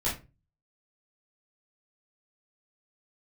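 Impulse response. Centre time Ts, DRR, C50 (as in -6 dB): 30 ms, -9.0 dB, 7.5 dB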